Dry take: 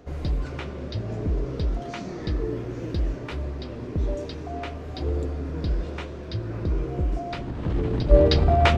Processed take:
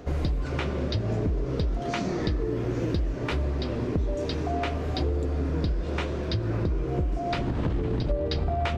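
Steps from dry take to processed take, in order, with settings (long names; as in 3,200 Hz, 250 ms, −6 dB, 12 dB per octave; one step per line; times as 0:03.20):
downward compressor 20 to 1, threshold −29 dBFS, peak gain reduction 21.5 dB
level +6.5 dB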